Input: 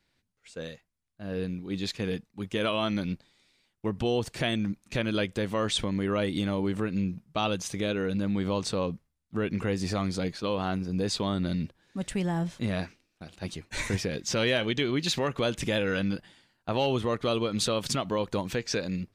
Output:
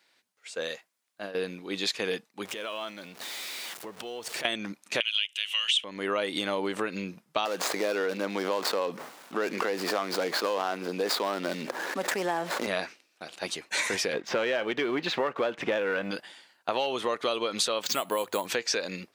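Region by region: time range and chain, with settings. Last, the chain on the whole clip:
0.70–1.35 s: bass shelf 62 Hz -11 dB + compressor with a negative ratio -38 dBFS, ratio -0.5
2.45–4.45 s: jump at every zero crossing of -40.5 dBFS + compression 10:1, threshold -38 dBFS
5.00–5.84 s: resonant high-pass 2.9 kHz, resonance Q 11 + peaking EQ 4.6 kHz -8.5 dB 0.33 oct + tape noise reduction on one side only encoder only
7.45–12.67 s: median filter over 15 samples + high-pass 250 Hz + level flattener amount 70%
14.13–16.11 s: low-pass 1.8 kHz + waveshaping leveller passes 1
17.82–18.47 s: hum notches 50/100/150 Hz + careless resampling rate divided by 4×, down filtered, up hold
whole clip: high-pass 500 Hz 12 dB/octave; compression, threshold -33 dBFS; trim +8.5 dB

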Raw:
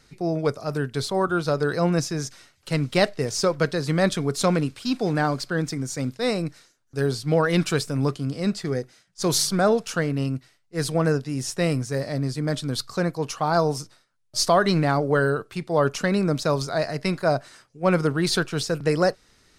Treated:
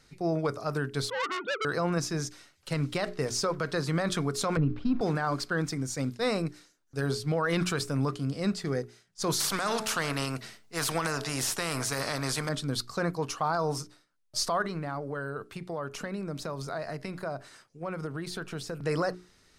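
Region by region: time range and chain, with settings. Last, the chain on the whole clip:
1.10–1.65 s: formants replaced by sine waves + transformer saturation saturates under 3.7 kHz
4.57–5.01 s: Gaussian low-pass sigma 1.8 samples + tilt EQ -4 dB/octave
9.40–12.49 s: de-hum 217.1 Hz, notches 4 + spectrum-flattening compressor 2:1
14.62–18.83 s: compression, threshold -28 dBFS + dynamic bell 5.3 kHz, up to -5 dB, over -49 dBFS, Q 0.75
whole clip: hum notches 60/120/180/240/300/360/420 Hz; dynamic bell 1.2 kHz, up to +7 dB, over -39 dBFS, Q 1.4; peak limiter -15.5 dBFS; trim -3.5 dB

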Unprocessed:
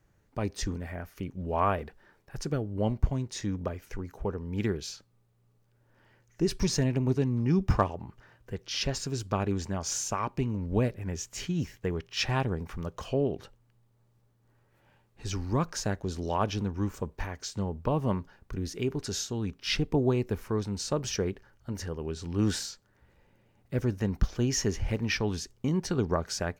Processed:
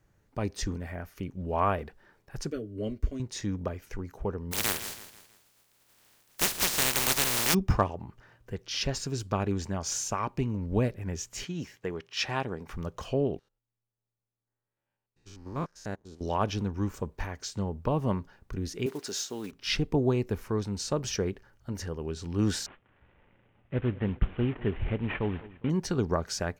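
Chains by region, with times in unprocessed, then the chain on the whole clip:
2.50–3.20 s: static phaser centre 350 Hz, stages 4 + comb of notches 170 Hz
4.51–7.53 s: spectral contrast reduction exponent 0.14 + feedback delay 162 ms, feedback 44%, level -13 dB
11.44–12.68 s: high-pass 300 Hz 6 dB/octave + treble shelf 10 kHz -6.5 dB
13.39–16.21 s: spectrogram pixelated in time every 100 ms + peaking EQ 69 Hz -5.5 dB 2.3 oct + upward expansion 2.5:1, over -43 dBFS
18.86–19.53 s: block-companded coder 5-bit + high-pass 290 Hz
22.66–25.70 s: CVSD coder 16 kbps + feedback delay 203 ms, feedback 42%, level -19 dB
whole clip: none

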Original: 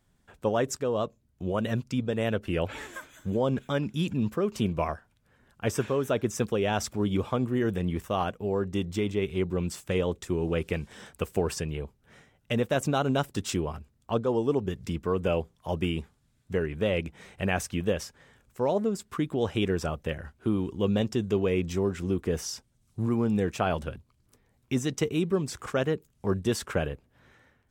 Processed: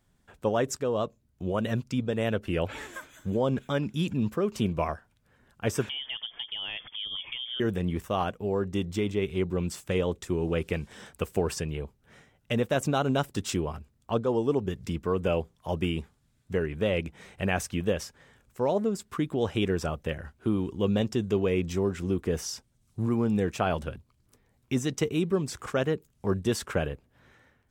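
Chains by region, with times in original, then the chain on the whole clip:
5.89–7.60 s: frequency inversion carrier 3.4 kHz + compression 3:1, threshold -35 dBFS
whole clip: none

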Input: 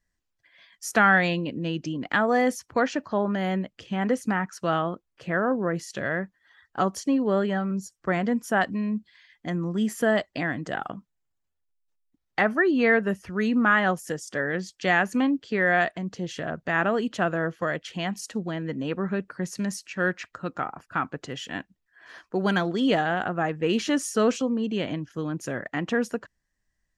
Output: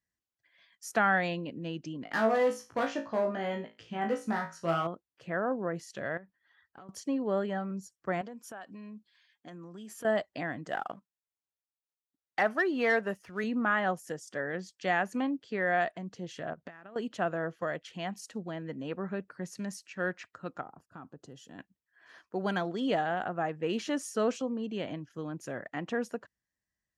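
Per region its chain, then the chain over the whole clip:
2.04–4.87 s: treble shelf 8.9 kHz -7 dB + hard clipper -18.5 dBFS + flutter echo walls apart 3.1 m, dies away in 0.28 s
6.17–6.89 s: low-pass 4.7 kHz + compression 12:1, threshold -38 dBFS
8.21–10.05 s: high-pass 370 Hz 6 dB/octave + band-stop 2 kHz, Q 7.3 + compression 5:1, threshold -33 dBFS
10.69–13.44 s: bass shelf 310 Hz -9 dB + waveshaping leveller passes 1
16.53–16.96 s: low-pass 6.1 kHz + compression 12:1, threshold -38 dBFS + transient shaper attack +8 dB, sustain 0 dB
20.61–21.59 s: peaking EQ 2.2 kHz -14 dB 2.1 oct + band-stop 2.2 kHz, Q 7.9 + compression 2.5:1, threshold -35 dBFS
whole clip: high-pass 74 Hz; dynamic bell 690 Hz, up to +5 dB, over -38 dBFS, Q 1.3; trim -9 dB

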